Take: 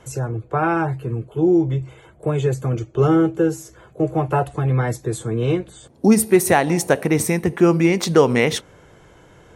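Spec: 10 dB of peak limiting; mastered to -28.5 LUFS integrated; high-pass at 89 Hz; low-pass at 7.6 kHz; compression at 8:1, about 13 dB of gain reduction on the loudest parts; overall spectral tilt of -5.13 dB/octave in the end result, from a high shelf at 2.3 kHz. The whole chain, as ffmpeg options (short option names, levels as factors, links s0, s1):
-af "highpass=89,lowpass=7600,highshelf=f=2300:g=8.5,acompressor=threshold=0.0794:ratio=8,volume=1.19,alimiter=limit=0.119:level=0:latency=1"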